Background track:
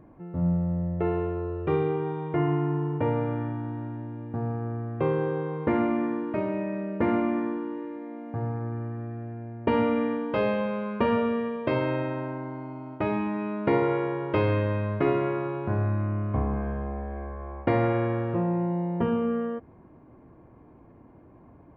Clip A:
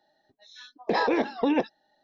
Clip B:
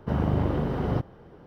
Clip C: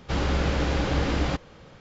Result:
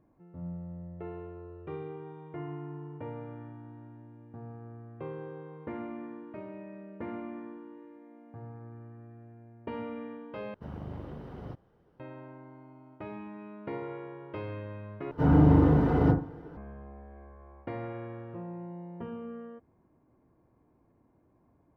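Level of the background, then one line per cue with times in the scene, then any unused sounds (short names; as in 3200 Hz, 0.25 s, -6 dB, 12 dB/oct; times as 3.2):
background track -14.5 dB
10.54 replace with B -16 dB
15.11 replace with B -7 dB + FDN reverb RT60 0.37 s, low-frequency decay 1.05×, high-frequency decay 0.3×, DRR -7.5 dB
not used: A, C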